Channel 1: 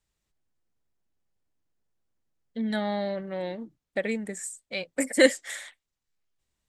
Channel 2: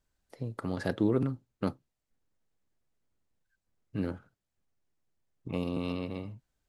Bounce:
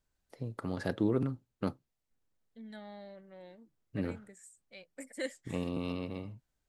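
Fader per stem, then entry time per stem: −19.0, −2.5 decibels; 0.00, 0.00 seconds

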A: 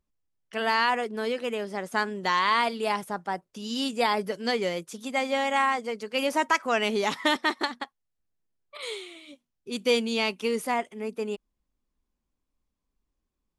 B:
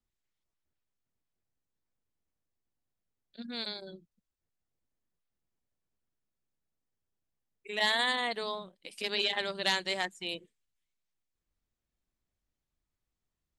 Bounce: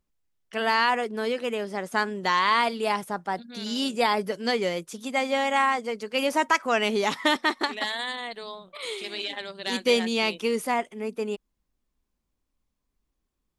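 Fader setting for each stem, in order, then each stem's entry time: +1.5, −2.5 decibels; 0.00, 0.00 seconds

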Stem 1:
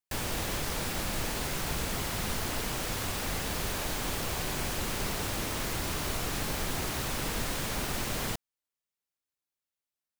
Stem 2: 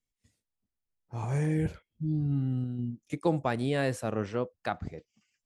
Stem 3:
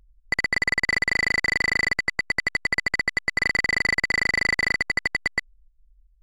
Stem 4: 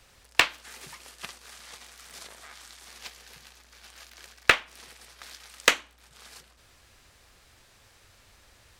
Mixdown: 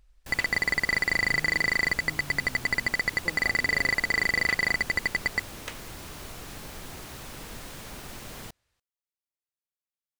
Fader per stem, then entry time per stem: −8.5, −15.5, −3.0, −20.0 decibels; 0.15, 0.00, 0.00, 0.00 seconds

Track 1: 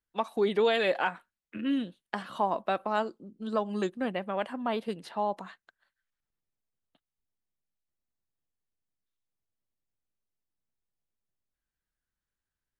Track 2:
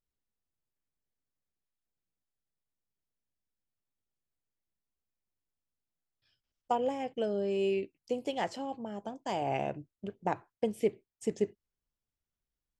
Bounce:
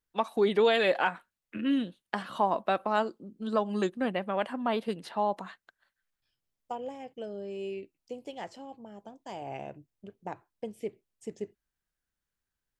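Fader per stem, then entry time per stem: +1.5, −7.0 decibels; 0.00, 0.00 seconds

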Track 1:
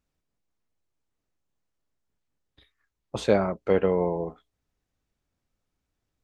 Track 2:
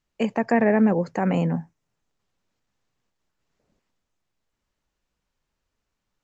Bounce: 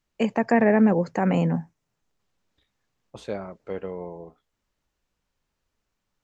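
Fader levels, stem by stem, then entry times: −10.5, +0.5 decibels; 0.00, 0.00 seconds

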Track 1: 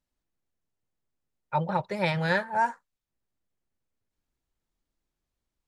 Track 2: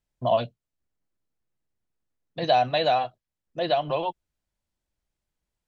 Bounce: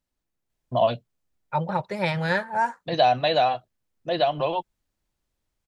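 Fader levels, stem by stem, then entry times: +1.5, +1.5 decibels; 0.00, 0.50 seconds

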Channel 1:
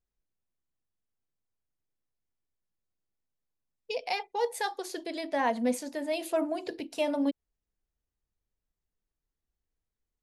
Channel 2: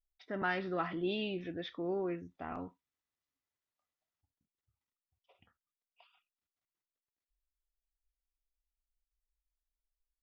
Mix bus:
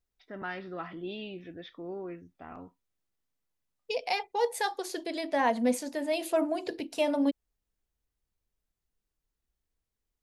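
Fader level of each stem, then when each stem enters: +1.5, −3.5 decibels; 0.00, 0.00 seconds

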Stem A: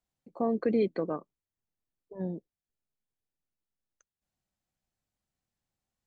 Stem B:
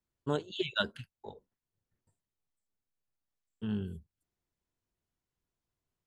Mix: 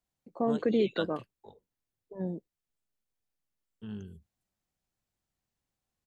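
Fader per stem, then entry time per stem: 0.0, −6.5 decibels; 0.00, 0.20 seconds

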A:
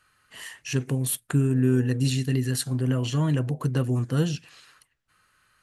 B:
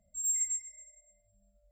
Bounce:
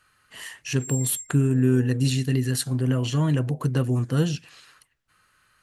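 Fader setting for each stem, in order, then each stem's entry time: +1.5, −2.5 decibels; 0.00, 0.65 seconds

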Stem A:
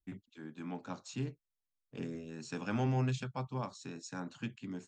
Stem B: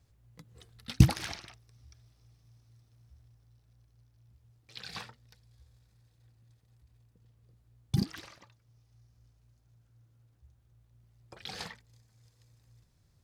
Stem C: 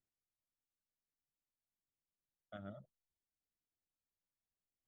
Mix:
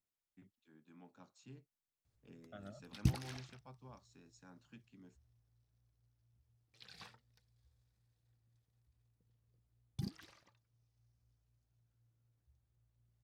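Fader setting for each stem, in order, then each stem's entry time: −18.0, −13.0, −2.5 decibels; 0.30, 2.05, 0.00 seconds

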